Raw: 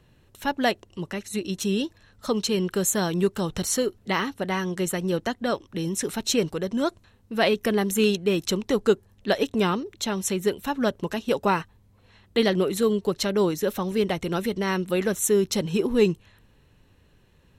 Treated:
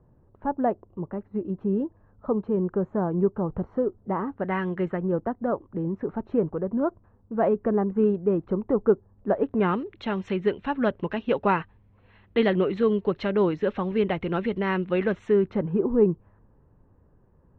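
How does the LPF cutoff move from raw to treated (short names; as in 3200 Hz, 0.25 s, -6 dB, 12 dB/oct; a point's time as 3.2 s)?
LPF 24 dB/oct
4.22 s 1100 Hz
4.64 s 2500 Hz
5.18 s 1200 Hz
9.36 s 1200 Hz
9.79 s 2700 Hz
15.2 s 2700 Hz
15.84 s 1200 Hz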